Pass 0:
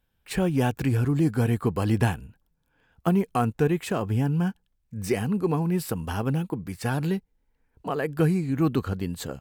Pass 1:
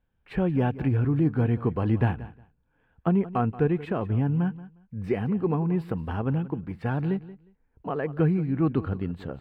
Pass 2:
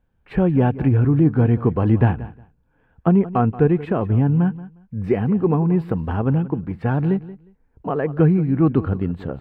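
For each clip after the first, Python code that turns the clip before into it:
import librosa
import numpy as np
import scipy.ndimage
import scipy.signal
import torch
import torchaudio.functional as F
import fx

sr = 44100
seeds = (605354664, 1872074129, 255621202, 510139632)

y1 = fx.air_absorb(x, sr, metres=490.0)
y1 = fx.echo_feedback(y1, sr, ms=179, feedback_pct=18, wet_db=-17.0)
y2 = fx.high_shelf(y1, sr, hz=2300.0, db=-9.0)
y2 = y2 * librosa.db_to_amplitude(7.5)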